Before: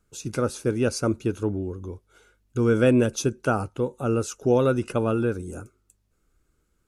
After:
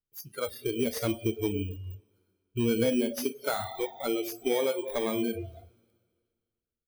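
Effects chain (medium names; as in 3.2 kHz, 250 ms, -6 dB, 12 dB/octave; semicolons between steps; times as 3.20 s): bit-reversed sample order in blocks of 16 samples; speakerphone echo 100 ms, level -13 dB; plate-style reverb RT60 2 s, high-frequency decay 1×, DRR 5.5 dB; compression 3:1, threshold -23 dBFS, peak gain reduction 8 dB; 3.07–5.16 s: peaking EQ 110 Hz -4 dB 0.87 oct; spectral noise reduction 26 dB; slew-rate limiter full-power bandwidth 190 Hz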